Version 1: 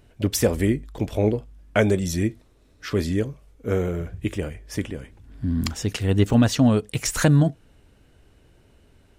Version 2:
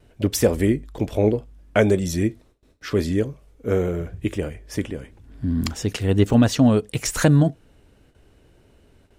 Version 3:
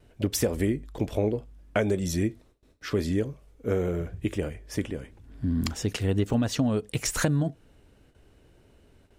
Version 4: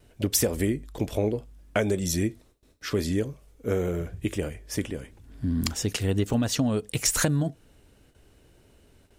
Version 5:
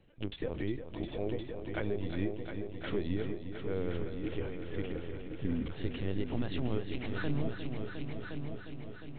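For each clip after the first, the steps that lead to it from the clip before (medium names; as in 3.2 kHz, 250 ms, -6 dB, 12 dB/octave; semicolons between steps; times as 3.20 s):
gate with hold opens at -47 dBFS; peaking EQ 420 Hz +3 dB 1.8 oct
compression 6:1, threshold -18 dBFS, peak gain reduction 7.5 dB; trim -3 dB
treble shelf 4.3 kHz +8 dB
peak limiter -18 dBFS, peak gain reduction 9.5 dB; LPC vocoder at 8 kHz pitch kept; multi-head delay 356 ms, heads all three, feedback 56%, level -10 dB; trim -7.5 dB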